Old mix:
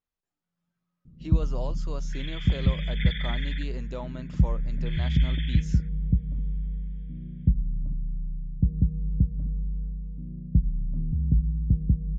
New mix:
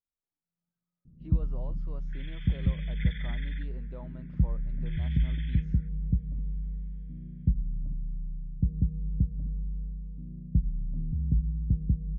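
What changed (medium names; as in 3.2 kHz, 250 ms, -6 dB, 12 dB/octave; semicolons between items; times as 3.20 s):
speech -8.0 dB; first sound -3.5 dB; master: add tape spacing loss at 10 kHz 37 dB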